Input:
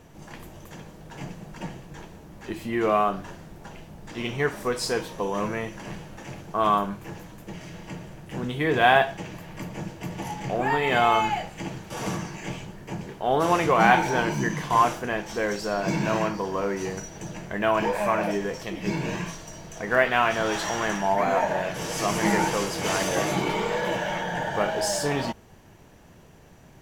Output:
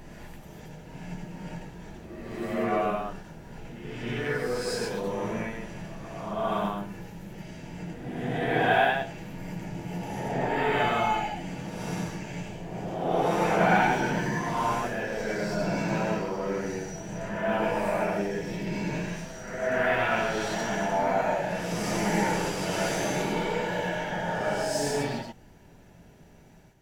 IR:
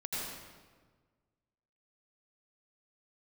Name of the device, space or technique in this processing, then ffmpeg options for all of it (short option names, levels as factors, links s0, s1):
reverse reverb: -filter_complex "[0:a]bandreject=f=1100:w=6.8,areverse[s0];[1:a]atrim=start_sample=2205[s1];[s0][s1]afir=irnorm=-1:irlink=0,areverse,volume=0.473"